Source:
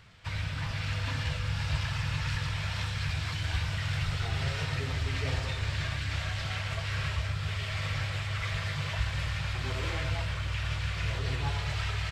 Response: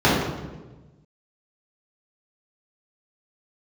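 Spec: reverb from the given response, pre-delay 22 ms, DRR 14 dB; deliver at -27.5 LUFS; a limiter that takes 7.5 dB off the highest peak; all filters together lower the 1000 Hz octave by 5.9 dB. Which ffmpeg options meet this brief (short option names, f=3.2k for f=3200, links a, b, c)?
-filter_complex "[0:a]equalizer=f=1k:t=o:g=-8,alimiter=level_in=1dB:limit=-24dB:level=0:latency=1,volume=-1dB,asplit=2[a][b];[1:a]atrim=start_sample=2205,adelay=22[c];[b][c]afir=irnorm=-1:irlink=0,volume=-37.5dB[d];[a][d]amix=inputs=2:normalize=0,volume=6dB"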